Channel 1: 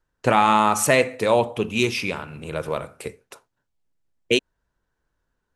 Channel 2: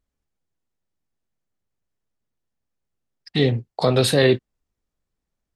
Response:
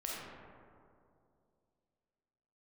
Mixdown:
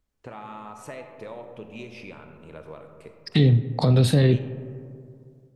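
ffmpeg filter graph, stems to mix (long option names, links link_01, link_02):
-filter_complex "[0:a]lowpass=frequency=2200:poles=1,acompressor=threshold=-24dB:ratio=6,volume=-19.5dB,asplit=2[link_01][link_02];[link_02]volume=-4.5dB[link_03];[1:a]acrossover=split=230[link_04][link_05];[link_05]acompressor=threshold=-31dB:ratio=10[link_06];[link_04][link_06]amix=inputs=2:normalize=0,volume=0.5dB,asplit=2[link_07][link_08];[link_08]volume=-13.5dB[link_09];[2:a]atrim=start_sample=2205[link_10];[link_03][link_09]amix=inputs=2:normalize=0[link_11];[link_11][link_10]afir=irnorm=-1:irlink=0[link_12];[link_01][link_07][link_12]amix=inputs=3:normalize=0,dynaudnorm=framelen=170:gausssize=3:maxgain=4.5dB"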